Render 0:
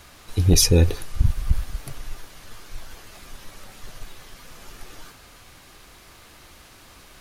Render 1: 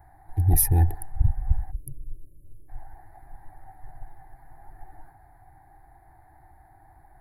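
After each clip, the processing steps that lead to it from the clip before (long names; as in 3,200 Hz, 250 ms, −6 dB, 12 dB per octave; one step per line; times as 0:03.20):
adaptive Wiener filter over 15 samples
time-frequency box erased 0:01.71–0:02.69, 600–6,400 Hz
drawn EQ curve 140 Hz 0 dB, 210 Hz −20 dB, 320 Hz −4 dB, 520 Hz −22 dB, 780 Hz +12 dB, 1,200 Hz −18 dB, 1,800 Hz 0 dB, 2,600 Hz −21 dB, 6,800 Hz −22 dB, 11,000 Hz +9 dB
level −2 dB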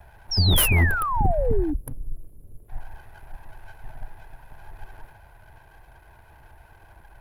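lower of the sound and its delayed copy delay 2 ms
in parallel at −4 dB: sine wavefolder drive 10 dB, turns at −8 dBFS
on the sum: sound drawn into the spectrogram fall, 0:00.31–0:01.74, 280–5,700 Hz −19 dBFS
level −6.5 dB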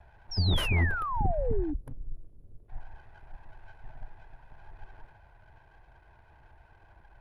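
high-frequency loss of the air 100 metres
level −6.5 dB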